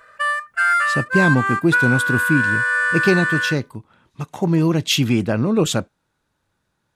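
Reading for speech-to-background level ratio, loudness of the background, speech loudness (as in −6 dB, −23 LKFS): −1.5 dB, −18.5 LKFS, −20.0 LKFS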